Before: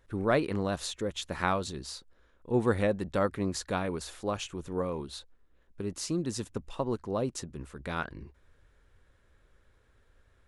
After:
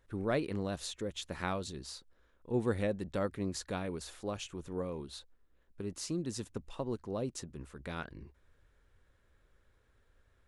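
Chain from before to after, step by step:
dynamic equaliser 1,100 Hz, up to −5 dB, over −43 dBFS, Q 0.98
level −4.5 dB

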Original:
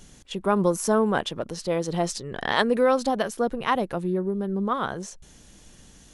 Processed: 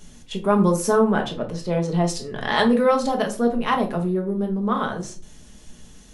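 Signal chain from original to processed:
0:00.99–0:02.08: high-shelf EQ 4,500 Hz −9 dB
rectangular room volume 230 cubic metres, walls furnished, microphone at 1.4 metres

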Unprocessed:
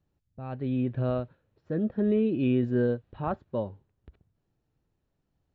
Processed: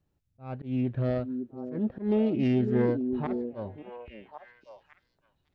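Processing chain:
phase distortion by the signal itself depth 0.17 ms
volume swells 133 ms
echo through a band-pass that steps 554 ms, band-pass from 310 Hz, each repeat 1.4 octaves, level −4 dB

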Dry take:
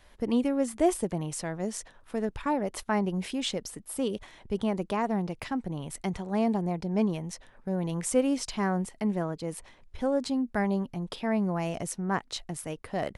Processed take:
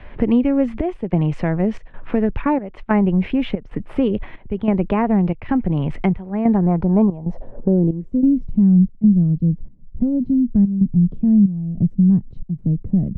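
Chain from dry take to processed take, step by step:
spectral tilt −3.5 dB per octave
gate pattern ".xxxx..xxxx" 93 BPM −12 dB
low-pass filter sweep 2,500 Hz → 190 Hz, 0:06.25–0:08.45
multiband upward and downward compressor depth 70%
level +4.5 dB

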